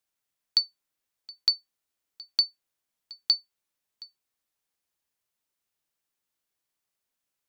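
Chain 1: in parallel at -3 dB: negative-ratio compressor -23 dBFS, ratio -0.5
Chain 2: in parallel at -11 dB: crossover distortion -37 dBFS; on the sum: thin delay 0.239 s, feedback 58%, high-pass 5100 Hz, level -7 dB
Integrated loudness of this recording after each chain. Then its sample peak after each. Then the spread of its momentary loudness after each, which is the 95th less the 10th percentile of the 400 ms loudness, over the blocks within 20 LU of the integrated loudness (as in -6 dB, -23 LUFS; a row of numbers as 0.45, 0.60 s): -24.5, -27.0 LUFS; -8.5, -9.0 dBFS; 19, 16 LU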